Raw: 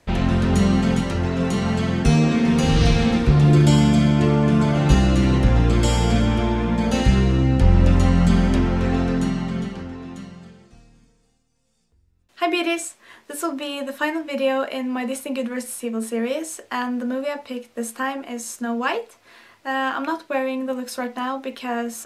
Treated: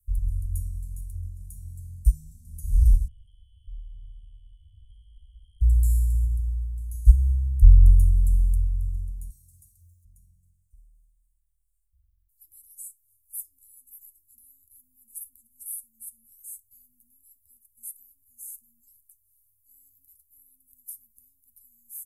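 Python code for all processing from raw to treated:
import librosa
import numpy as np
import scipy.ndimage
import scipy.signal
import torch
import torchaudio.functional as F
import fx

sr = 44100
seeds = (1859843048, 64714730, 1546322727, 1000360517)

y = fx.chain(x, sr, fx.freq_invert(carrier_hz=3200),
    fx.env_flatten(amount_pct=70), at=(3.08, 5.61))
y = fx.chain(y, sr, fx.highpass(hz=71.0, slope=24),
    fx.tilt_eq(slope=2.0),
    fx.comb(ms=2.9, depth=0.82), at=(9.3, 10.05))
y = scipy.signal.sosfilt(scipy.signal.cheby2(4, 80, [360.0, 2700.0], 'bandstop', fs=sr, output='sos'), y)
y = fx.high_shelf(y, sr, hz=7500.0, db=9.0)
y = fx.upward_expand(y, sr, threshold_db=-30.0, expansion=1.5)
y = y * 10.0 ** (7.0 / 20.0)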